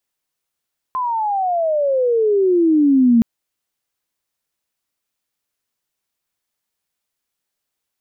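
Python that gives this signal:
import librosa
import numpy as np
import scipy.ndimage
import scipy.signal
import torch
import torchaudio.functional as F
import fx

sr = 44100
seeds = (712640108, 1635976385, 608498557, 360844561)

y = fx.riser_tone(sr, length_s=2.27, level_db=-8.5, wave='sine', hz=1040.0, rise_st=-26.5, swell_db=9.5)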